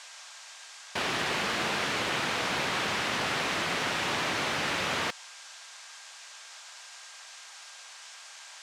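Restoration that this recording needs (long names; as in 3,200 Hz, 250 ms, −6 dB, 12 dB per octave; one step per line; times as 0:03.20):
notch filter 1,600 Hz, Q 30
noise reduction from a noise print 30 dB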